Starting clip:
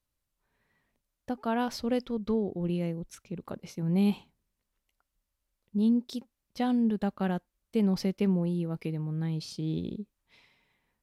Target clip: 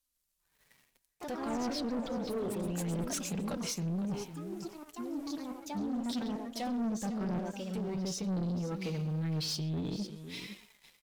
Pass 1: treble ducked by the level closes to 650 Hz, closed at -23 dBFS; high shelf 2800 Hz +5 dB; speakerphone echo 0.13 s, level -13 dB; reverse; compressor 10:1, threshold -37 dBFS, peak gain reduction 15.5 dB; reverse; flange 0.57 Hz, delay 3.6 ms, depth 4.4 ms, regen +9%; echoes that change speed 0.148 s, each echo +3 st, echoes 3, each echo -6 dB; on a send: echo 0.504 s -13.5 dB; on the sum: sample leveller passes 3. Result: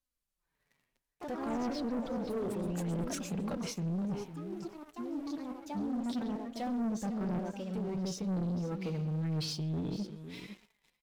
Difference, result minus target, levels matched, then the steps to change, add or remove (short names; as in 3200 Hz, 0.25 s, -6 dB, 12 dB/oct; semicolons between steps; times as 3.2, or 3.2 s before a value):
4000 Hz band -4.0 dB
change: high shelf 2800 Hz +16.5 dB